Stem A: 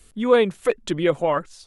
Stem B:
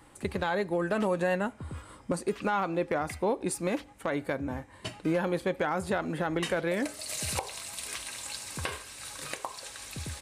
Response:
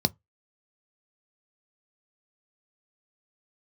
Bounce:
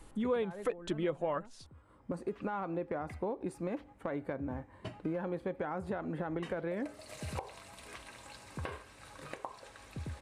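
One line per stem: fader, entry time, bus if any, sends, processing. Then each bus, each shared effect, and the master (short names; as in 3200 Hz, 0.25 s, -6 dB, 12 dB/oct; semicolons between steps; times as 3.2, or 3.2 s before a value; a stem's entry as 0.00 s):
-2.0 dB, 0.00 s, no send, dry
-2.0 dB, 0.00 s, no send, high shelf 2700 Hz -10 dB; auto duck -21 dB, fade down 1.95 s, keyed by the first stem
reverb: off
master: high shelf 2600 Hz -8.5 dB; compressor 3:1, threshold -34 dBFS, peak gain reduction 15.5 dB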